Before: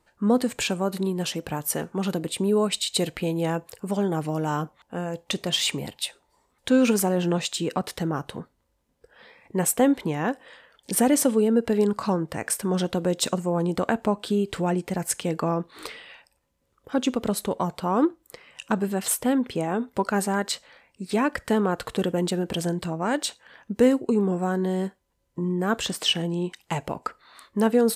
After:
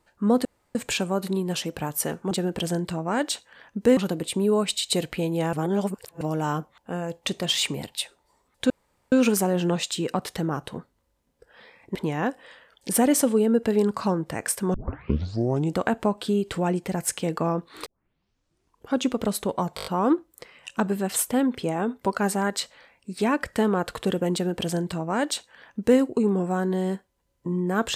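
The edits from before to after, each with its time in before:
0.45 insert room tone 0.30 s
3.57–4.25 reverse
6.74 insert room tone 0.42 s
9.57–9.97 cut
12.76 tape start 1.01 s
15.88 tape start 1.08 s
17.78 stutter 0.02 s, 6 plays
22.25–23.91 copy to 2.01

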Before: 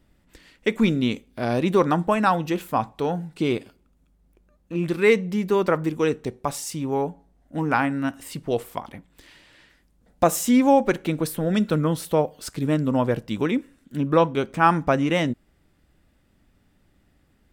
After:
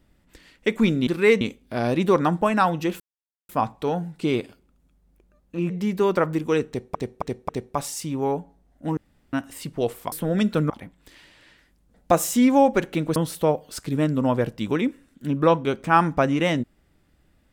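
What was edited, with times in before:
2.66 insert silence 0.49 s
4.87–5.21 move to 1.07
6.19–6.46 loop, 4 plays
7.67–8.03 room tone
11.28–11.86 move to 8.82

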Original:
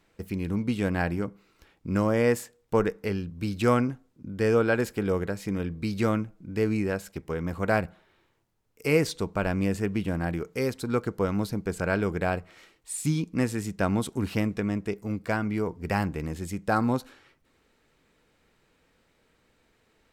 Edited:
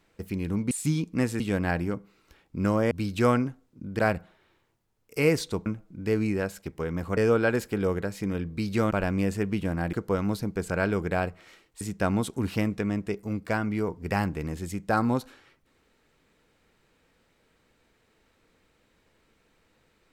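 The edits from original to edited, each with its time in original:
2.22–3.34 cut
4.42–6.16 swap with 7.67–9.34
10.36–11.03 cut
12.91–13.6 move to 0.71

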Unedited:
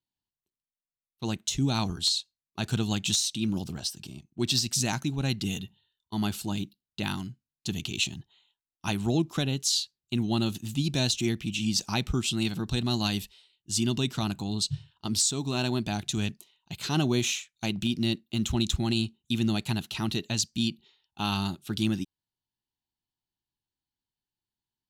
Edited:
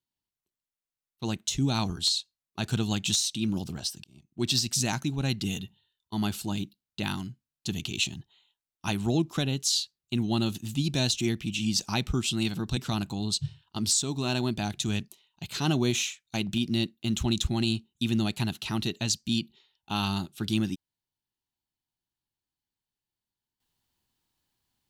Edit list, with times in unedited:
4.04–4.45 fade in
12.77–14.06 cut

